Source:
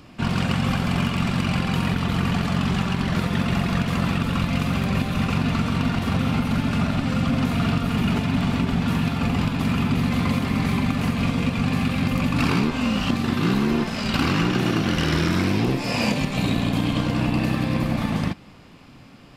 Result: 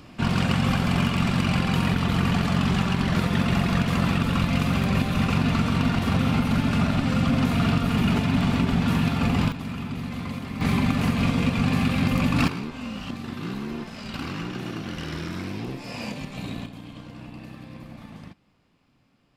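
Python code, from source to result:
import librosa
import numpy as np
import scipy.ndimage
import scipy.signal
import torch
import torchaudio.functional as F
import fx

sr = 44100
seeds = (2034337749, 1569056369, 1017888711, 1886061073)

y = fx.gain(x, sr, db=fx.steps((0.0, 0.0), (9.52, -10.0), (10.61, 0.0), (12.48, -11.0), (16.66, -18.5)))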